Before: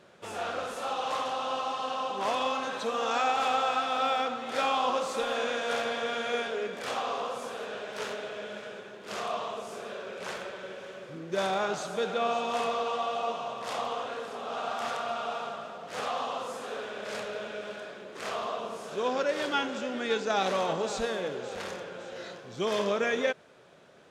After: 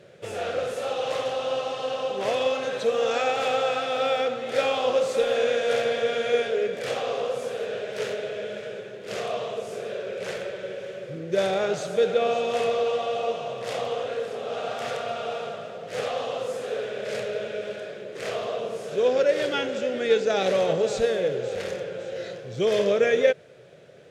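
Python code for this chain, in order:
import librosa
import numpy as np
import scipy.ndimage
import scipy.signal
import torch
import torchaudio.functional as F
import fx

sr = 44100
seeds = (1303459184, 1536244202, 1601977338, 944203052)

y = fx.graphic_eq_10(x, sr, hz=(125, 250, 500, 1000, 2000), db=(11, -5, 11, -11, 4))
y = y * librosa.db_to_amplitude(2.0)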